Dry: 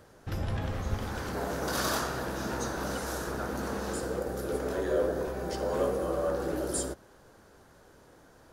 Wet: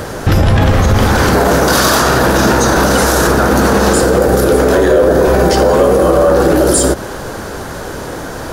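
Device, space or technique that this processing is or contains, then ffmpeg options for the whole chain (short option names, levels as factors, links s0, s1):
loud club master: -af "acompressor=threshold=0.02:ratio=2,asoftclip=type=hard:threshold=0.0531,alimiter=level_in=50.1:limit=0.891:release=50:level=0:latency=1,volume=0.891"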